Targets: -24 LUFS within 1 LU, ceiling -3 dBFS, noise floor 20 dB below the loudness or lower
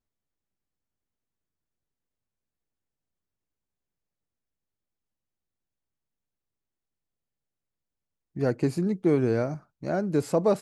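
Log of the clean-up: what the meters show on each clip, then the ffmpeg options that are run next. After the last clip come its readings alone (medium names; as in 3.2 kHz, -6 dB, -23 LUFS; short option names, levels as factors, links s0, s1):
loudness -26.5 LUFS; peak level -11.0 dBFS; loudness target -24.0 LUFS
-> -af "volume=1.33"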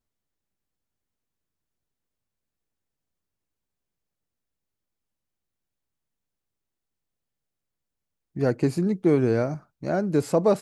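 loudness -24.0 LUFS; peak level -8.5 dBFS; noise floor -84 dBFS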